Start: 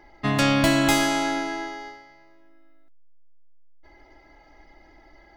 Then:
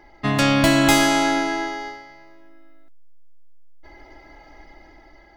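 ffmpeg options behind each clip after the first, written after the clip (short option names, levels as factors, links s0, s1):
-af "dynaudnorm=f=240:g=7:m=1.78,volume=1.26"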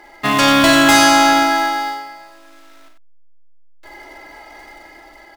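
-filter_complex "[0:a]acrusher=bits=4:mode=log:mix=0:aa=0.000001,asplit=2[s0][s1];[s1]highpass=f=720:p=1,volume=6.31,asoftclip=type=tanh:threshold=0.841[s2];[s0][s2]amix=inputs=2:normalize=0,lowpass=f=6100:p=1,volume=0.501,aecho=1:1:47|93:0.473|0.398,volume=0.891"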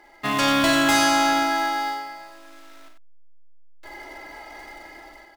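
-af "dynaudnorm=f=110:g=5:m=2.24,volume=0.376"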